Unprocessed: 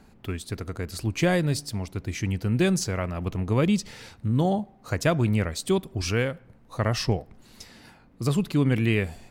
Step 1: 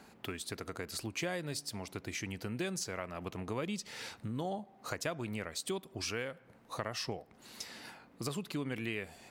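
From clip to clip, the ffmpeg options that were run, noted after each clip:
ffmpeg -i in.wav -af "highpass=frequency=440:poles=1,acompressor=threshold=-41dB:ratio=3,volume=2.5dB" out.wav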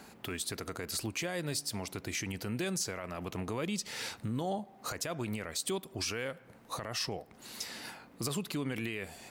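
ffmpeg -i in.wav -af "alimiter=level_in=6.5dB:limit=-24dB:level=0:latency=1:release=20,volume=-6.5dB,highshelf=frequency=6100:gain=5.5,volume=4dB" out.wav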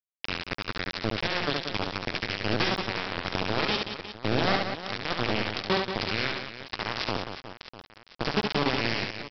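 ffmpeg -i in.wav -af "aresample=11025,acrusher=bits=4:mix=0:aa=0.000001,aresample=44100,aecho=1:1:70|182|361.2|647.9|1107:0.631|0.398|0.251|0.158|0.1,volume=7dB" out.wav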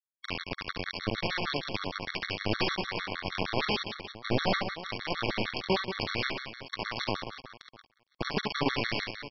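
ffmpeg -i in.wav -af "agate=range=-33dB:threshold=-41dB:ratio=3:detection=peak,afftfilt=real='re*gt(sin(2*PI*6.5*pts/sr)*(1-2*mod(floor(b*sr/1024/1100),2)),0)':imag='im*gt(sin(2*PI*6.5*pts/sr)*(1-2*mod(floor(b*sr/1024/1100),2)),0)':win_size=1024:overlap=0.75" out.wav

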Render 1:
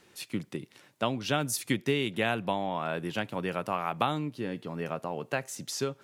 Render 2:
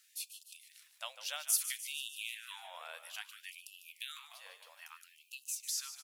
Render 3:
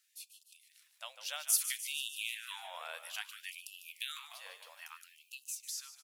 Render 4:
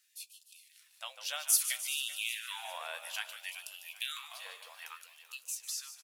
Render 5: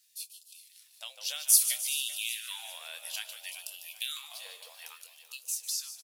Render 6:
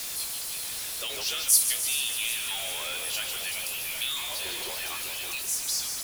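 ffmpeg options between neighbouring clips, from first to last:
ffmpeg -i in.wav -filter_complex "[0:a]aderivative,asplit=8[link_01][link_02][link_03][link_04][link_05][link_06][link_07][link_08];[link_02]adelay=149,afreqshift=-52,volume=-11.5dB[link_09];[link_03]adelay=298,afreqshift=-104,volume=-15.9dB[link_10];[link_04]adelay=447,afreqshift=-156,volume=-20.4dB[link_11];[link_05]adelay=596,afreqshift=-208,volume=-24.8dB[link_12];[link_06]adelay=745,afreqshift=-260,volume=-29.2dB[link_13];[link_07]adelay=894,afreqshift=-312,volume=-33.7dB[link_14];[link_08]adelay=1043,afreqshift=-364,volume=-38.1dB[link_15];[link_01][link_09][link_10][link_11][link_12][link_13][link_14][link_15]amix=inputs=8:normalize=0,afftfilt=real='re*gte(b*sr/1024,430*pow(2600/430,0.5+0.5*sin(2*PI*0.6*pts/sr)))':imag='im*gte(b*sr/1024,430*pow(2600/430,0.5+0.5*sin(2*PI*0.6*pts/sr)))':win_size=1024:overlap=0.75,volume=1dB" out.wav
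ffmpeg -i in.wav -af "dynaudnorm=framelen=510:gausssize=5:maxgain=11dB,volume=-7.5dB" out.wav
ffmpeg -i in.wav -filter_complex "[0:a]flanger=delay=1.1:depth=1.7:regen=-72:speed=0.34:shape=sinusoidal,asplit=2[link_01][link_02];[link_02]adelay=17,volume=-13.5dB[link_03];[link_01][link_03]amix=inputs=2:normalize=0,aecho=1:1:386|772|1158|1544:0.178|0.0765|0.0329|0.0141,volume=7dB" out.wav
ffmpeg -i in.wav -filter_complex "[0:a]acrossover=split=890|6700[link_01][link_02][link_03];[link_01]acompressor=threshold=-59dB:ratio=6[link_04];[link_02]bandpass=frequency=4800:width_type=q:width=1.4:csg=0[link_05];[link_03]asplit=2[link_06][link_07];[link_07]adelay=26,volume=-6.5dB[link_08];[link_06][link_08]amix=inputs=2:normalize=0[link_09];[link_04][link_05][link_09]amix=inputs=3:normalize=0,volume=6dB" out.wav
ffmpeg -i in.wav -af "aeval=exprs='val(0)+0.5*0.0355*sgn(val(0))':channel_layout=same,afreqshift=-110" out.wav

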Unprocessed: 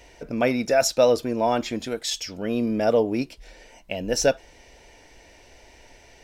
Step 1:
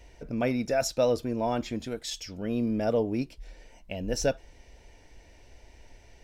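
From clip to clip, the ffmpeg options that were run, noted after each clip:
ffmpeg -i in.wav -af "lowshelf=frequency=190:gain=11.5,volume=-8dB" out.wav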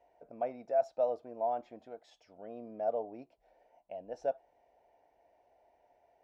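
ffmpeg -i in.wav -af "bandpass=frequency=710:width_type=q:width=4.3:csg=0" out.wav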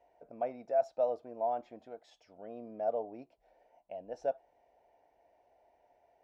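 ffmpeg -i in.wav -af anull out.wav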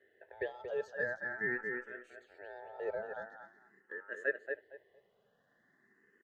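ffmpeg -i in.wav -filter_complex "[0:a]aeval=exprs='val(0)*sin(2*PI*1100*n/s)':channel_layout=same,asplit=2[link_01][link_02];[link_02]adelay=230,lowpass=frequency=3500:poles=1,volume=-5dB,asplit=2[link_03][link_04];[link_04]adelay=230,lowpass=frequency=3500:poles=1,volume=0.23,asplit=2[link_05][link_06];[link_06]adelay=230,lowpass=frequency=3500:poles=1,volume=0.23[link_07];[link_01][link_03][link_05][link_07]amix=inputs=4:normalize=0,asplit=2[link_08][link_09];[link_09]afreqshift=0.45[link_10];[link_08][link_10]amix=inputs=2:normalize=1,volume=3dB" out.wav

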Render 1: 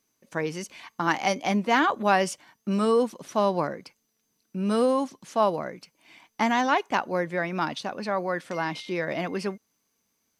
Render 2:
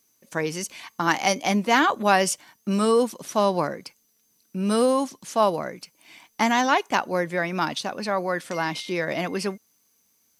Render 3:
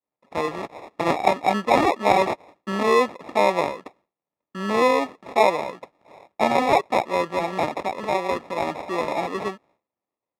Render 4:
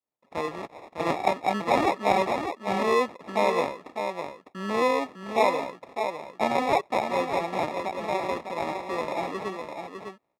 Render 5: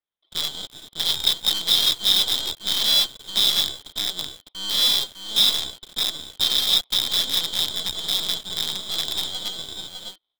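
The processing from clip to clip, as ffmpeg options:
ffmpeg -i in.wav -af "highshelf=frequency=5400:gain=11,volume=2dB" out.wav
ffmpeg -i in.wav -af "agate=range=-33dB:threshold=-51dB:ratio=3:detection=peak,acrusher=samples=29:mix=1:aa=0.000001,bandpass=frequency=980:width_type=q:width=0.59:csg=0,volume=4.5dB" out.wav
ffmpeg -i in.wav -af "aecho=1:1:604:0.473,volume=-5dB" out.wav
ffmpeg -i in.wav -filter_complex "[0:a]afftfilt=real='real(if(lt(b,272),68*(eq(floor(b/68),0)*2+eq(floor(b/68),1)*3+eq(floor(b/68),2)*0+eq(floor(b/68),3)*1)+mod(b,68),b),0)':imag='imag(if(lt(b,272),68*(eq(floor(b/68),0)*2+eq(floor(b/68),1)*3+eq(floor(b/68),2)*0+eq(floor(b/68),3)*1)+mod(b,68),b),0)':win_size=2048:overlap=0.75,acrossover=split=180|3000[link_01][link_02][link_03];[link_02]volume=34.5dB,asoftclip=hard,volume=-34.5dB[link_04];[link_03]acrusher=bits=5:dc=4:mix=0:aa=0.000001[link_05];[link_01][link_04][link_05]amix=inputs=3:normalize=0,volume=5dB" out.wav

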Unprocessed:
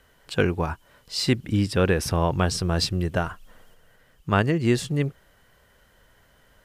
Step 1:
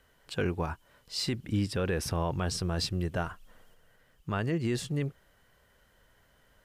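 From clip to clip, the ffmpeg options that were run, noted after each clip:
ffmpeg -i in.wav -af "alimiter=limit=-14.5dB:level=0:latency=1:release=10,volume=-6dB" out.wav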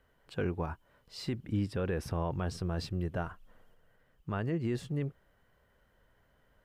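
ffmpeg -i in.wav -af "equalizer=frequency=7900:width=0.31:gain=-10.5,volume=-2.5dB" out.wav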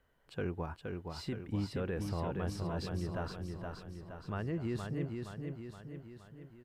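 ffmpeg -i in.wav -af "aecho=1:1:470|940|1410|1880|2350|2820|3290:0.596|0.322|0.174|0.0938|0.0506|0.0274|0.0148,volume=-4dB" out.wav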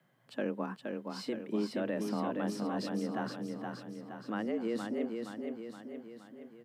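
ffmpeg -i in.wav -af "afreqshift=110,volume=2dB" out.wav

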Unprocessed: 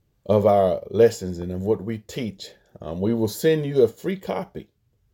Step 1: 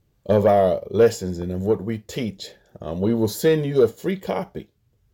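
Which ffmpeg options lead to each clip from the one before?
ffmpeg -i in.wav -af "acontrast=71,volume=-4.5dB" out.wav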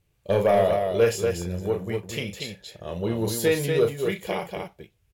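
ffmpeg -i in.wav -filter_complex "[0:a]equalizer=frequency=250:width_type=o:width=0.67:gain=-8,equalizer=frequency=2500:width_type=o:width=0.67:gain=9,equalizer=frequency=10000:width_type=o:width=0.67:gain=8,asplit=2[link_01][link_02];[link_02]aecho=0:1:34.99|239.1:0.447|0.562[link_03];[link_01][link_03]amix=inputs=2:normalize=0,volume=-4dB" out.wav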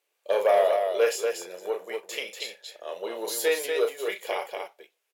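ffmpeg -i in.wav -af "highpass=frequency=460:width=0.5412,highpass=frequency=460:width=1.3066" out.wav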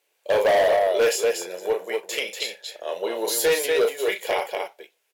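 ffmpeg -i in.wav -af "bandreject=frequency=1200:width=9.4,asoftclip=type=hard:threshold=-22dB,volume=6.5dB" out.wav

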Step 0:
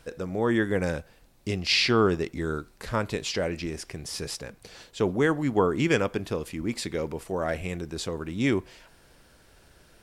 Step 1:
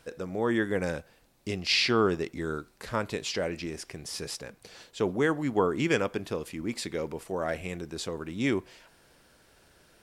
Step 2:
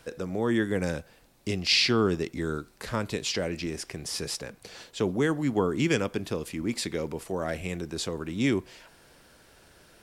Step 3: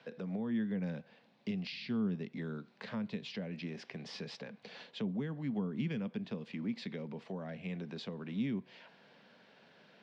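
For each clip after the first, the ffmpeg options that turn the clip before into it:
ffmpeg -i in.wav -af "lowshelf=frequency=90:gain=-9.5,volume=-2dB" out.wav
ffmpeg -i in.wav -filter_complex "[0:a]acrossover=split=320|3000[link_01][link_02][link_03];[link_02]acompressor=threshold=-43dB:ratio=1.5[link_04];[link_01][link_04][link_03]amix=inputs=3:normalize=0,volume=4dB" out.wav
ffmpeg -i in.wav -filter_complex "[0:a]highpass=frequency=160:width=0.5412,highpass=frequency=160:width=1.3066,equalizer=frequency=210:width_type=q:width=4:gain=6,equalizer=frequency=330:width_type=q:width=4:gain=-10,equalizer=frequency=1300:width_type=q:width=4:gain=-5,lowpass=frequency=4000:width=0.5412,lowpass=frequency=4000:width=1.3066,acrossover=split=230[link_01][link_02];[link_02]acompressor=threshold=-40dB:ratio=10[link_03];[link_01][link_03]amix=inputs=2:normalize=0,volume=-3dB" out.wav

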